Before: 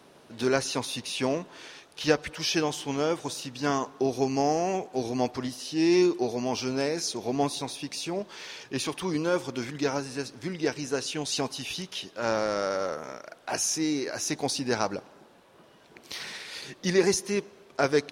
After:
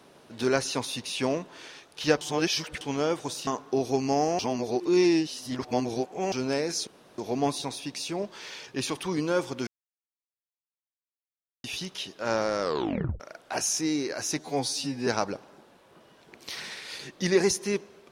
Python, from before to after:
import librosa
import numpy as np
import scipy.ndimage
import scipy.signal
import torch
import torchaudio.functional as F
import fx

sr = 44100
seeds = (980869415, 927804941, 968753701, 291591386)

y = fx.edit(x, sr, fx.reverse_span(start_s=2.21, length_s=0.6),
    fx.cut(start_s=3.47, length_s=0.28),
    fx.reverse_span(start_s=4.67, length_s=1.93),
    fx.insert_room_tone(at_s=7.15, length_s=0.31),
    fx.silence(start_s=9.64, length_s=1.97),
    fx.tape_stop(start_s=12.58, length_s=0.59),
    fx.stretch_span(start_s=14.36, length_s=0.34, factor=2.0), tone=tone)